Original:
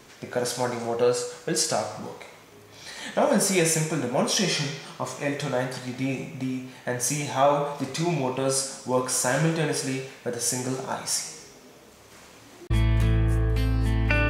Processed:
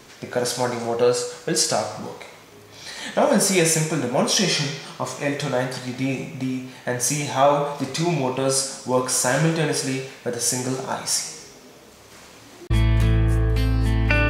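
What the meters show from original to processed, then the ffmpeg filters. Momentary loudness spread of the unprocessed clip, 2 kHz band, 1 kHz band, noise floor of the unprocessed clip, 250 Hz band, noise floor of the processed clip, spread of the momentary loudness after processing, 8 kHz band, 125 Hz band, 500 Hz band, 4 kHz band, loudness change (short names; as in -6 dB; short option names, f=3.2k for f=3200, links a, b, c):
11 LU, +3.5 dB, +3.5 dB, -50 dBFS, +3.5 dB, -46 dBFS, 11 LU, +4.0 dB, +3.5 dB, +3.5 dB, +5.0 dB, +3.5 dB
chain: -af "equalizer=f=4.5k:t=o:w=0.77:g=2,volume=3.5dB"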